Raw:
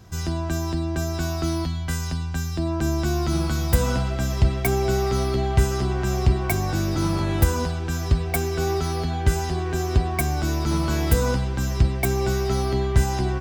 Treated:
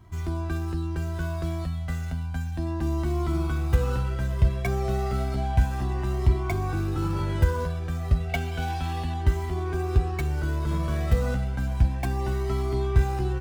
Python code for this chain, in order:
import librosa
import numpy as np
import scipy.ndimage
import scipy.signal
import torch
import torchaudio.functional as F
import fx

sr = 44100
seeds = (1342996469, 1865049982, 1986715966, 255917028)

y = scipy.signal.medfilt(x, 9)
y = fx.peak_eq(y, sr, hz=3100.0, db=9.0, octaves=0.8, at=(8.29, 9.14))
y = fx.comb_cascade(y, sr, direction='rising', hz=0.32)